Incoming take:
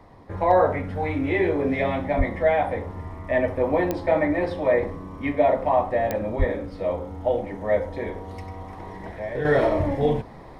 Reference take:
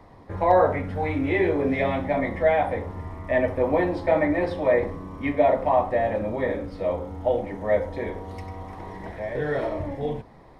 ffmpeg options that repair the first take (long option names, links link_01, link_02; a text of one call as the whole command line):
ffmpeg -i in.wav -filter_complex "[0:a]adeclick=threshold=4,asplit=3[link_01][link_02][link_03];[link_01]afade=type=out:start_time=2.17:duration=0.02[link_04];[link_02]highpass=frequency=140:width=0.5412,highpass=frequency=140:width=1.3066,afade=type=in:start_time=2.17:duration=0.02,afade=type=out:start_time=2.29:duration=0.02[link_05];[link_03]afade=type=in:start_time=2.29:duration=0.02[link_06];[link_04][link_05][link_06]amix=inputs=3:normalize=0,asplit=3[link_07][link_08][link_09];[link_07]afade=type=out:start_time=6.38:duration=0.02[link_10];[link_08]highpass=frequency=140:width=0.5412,highpass=frequency=140:width=1.3066,afade=type=in:start_time=6.38:duration=0.02,afade=type=out:start_time=6.5:duration=0.02[link_11];[link_09]afade=type=in:start_time=6.5:duration=0.02[link_12];[link_10][link_11][link_12]amix=inputs=3:normalize=0,asetnsamples=nb_out_samples=441:pad=0,asendcmd='9.45 volume volume -7dB',volume=0dB" out.wav